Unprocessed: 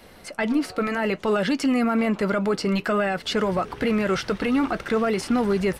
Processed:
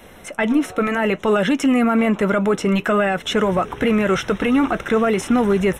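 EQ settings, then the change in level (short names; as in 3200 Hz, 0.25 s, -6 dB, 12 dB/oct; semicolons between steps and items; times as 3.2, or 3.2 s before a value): Butterworth band-stop 4600 Hz, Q 2.9; +5.0 dB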